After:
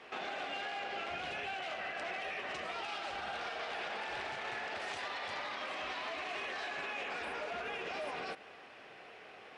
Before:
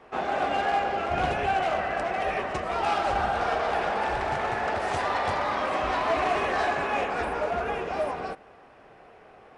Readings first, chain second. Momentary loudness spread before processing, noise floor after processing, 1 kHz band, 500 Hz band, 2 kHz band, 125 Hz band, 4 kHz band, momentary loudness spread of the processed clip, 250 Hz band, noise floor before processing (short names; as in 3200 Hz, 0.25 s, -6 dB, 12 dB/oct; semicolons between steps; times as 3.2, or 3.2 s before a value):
5 LU, -54 dBFS, -15.5 dB, -15.0 dB, -8.5 dB, -21.0 dB, -4.5 dB, 5 LU, -16.0 dB, -52 dBFS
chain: weighting filter D; compressor, threshold -31 dBFS, peak gain reduction 11.5 dB; limiter -28 dBFS, peak gain reduction 7.5 dB; gain -3.5 dB